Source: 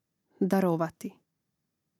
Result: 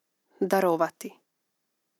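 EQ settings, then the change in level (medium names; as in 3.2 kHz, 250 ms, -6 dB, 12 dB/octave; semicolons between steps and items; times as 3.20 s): high-pass 390 Hz 12 dB/octave; +6.5 dB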